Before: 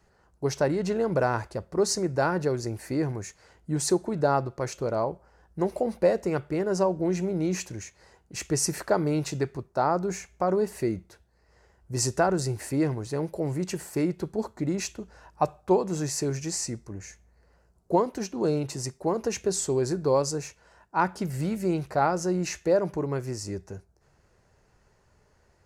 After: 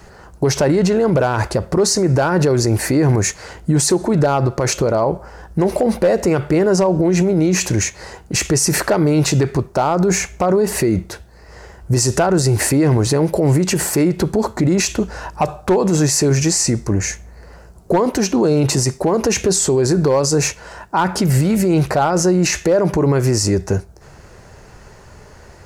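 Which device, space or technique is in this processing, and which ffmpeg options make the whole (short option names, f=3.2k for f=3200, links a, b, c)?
loud club master: -af "acompressor=threshold=-29dB:ratio=1.5,asoftclip=type=hard:threshold=-19.5dB,alimiter=level_in=29dB:limit=-1dB:release=50:level=0:latency=1,volume=-7dB"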